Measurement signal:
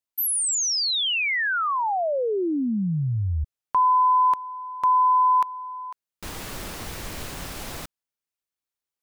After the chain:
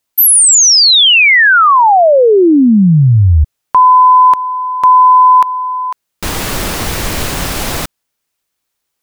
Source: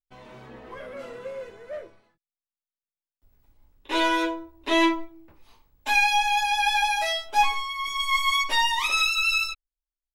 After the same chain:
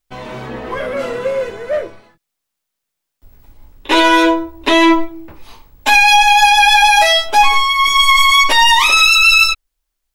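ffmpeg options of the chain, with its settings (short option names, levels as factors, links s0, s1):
-af "alimiter=level_in=8.41:limit=0.891:release=50:level=0:latency=1,volume=0.891"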